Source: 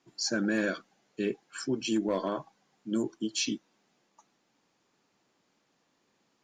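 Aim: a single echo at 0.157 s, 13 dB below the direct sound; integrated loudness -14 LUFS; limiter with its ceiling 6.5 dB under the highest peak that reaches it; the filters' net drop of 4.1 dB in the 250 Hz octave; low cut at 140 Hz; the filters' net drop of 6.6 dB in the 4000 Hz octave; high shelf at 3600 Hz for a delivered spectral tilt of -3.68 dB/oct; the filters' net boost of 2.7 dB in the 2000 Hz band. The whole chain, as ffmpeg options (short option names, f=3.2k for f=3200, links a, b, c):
-af "highpass=140,equalizer=f=250:t=o:g=-5,equalizer=f=2k:t=o:g=7,highshelf=f=3.6k:g=-7.5,equalizer=f=4k:t=o:g=-5.5,alimiter=level_in=1dB:limit=-24dB:level=0:latency=1,volume=-1dB,aecho=1:1:157:0.224,volume=22.5dB"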